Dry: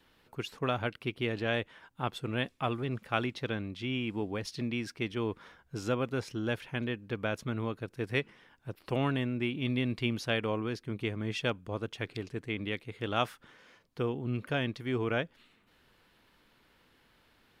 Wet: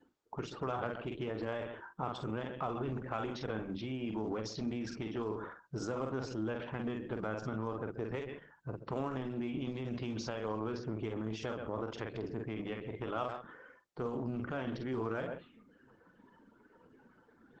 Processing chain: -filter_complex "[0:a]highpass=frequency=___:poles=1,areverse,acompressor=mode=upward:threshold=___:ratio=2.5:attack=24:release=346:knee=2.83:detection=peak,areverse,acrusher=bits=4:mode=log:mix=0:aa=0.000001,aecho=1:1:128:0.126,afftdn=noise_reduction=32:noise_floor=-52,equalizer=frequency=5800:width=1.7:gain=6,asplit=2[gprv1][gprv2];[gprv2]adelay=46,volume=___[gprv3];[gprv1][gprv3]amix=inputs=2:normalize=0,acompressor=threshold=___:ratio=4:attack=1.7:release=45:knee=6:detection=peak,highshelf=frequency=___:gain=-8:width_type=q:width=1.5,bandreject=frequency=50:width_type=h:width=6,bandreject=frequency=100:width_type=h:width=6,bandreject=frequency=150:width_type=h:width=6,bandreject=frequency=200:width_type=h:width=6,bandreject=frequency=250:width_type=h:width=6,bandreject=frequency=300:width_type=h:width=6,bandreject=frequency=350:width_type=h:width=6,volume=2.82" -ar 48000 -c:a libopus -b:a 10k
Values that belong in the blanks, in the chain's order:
140, 0.00282, 0.398, 0.00708, 1600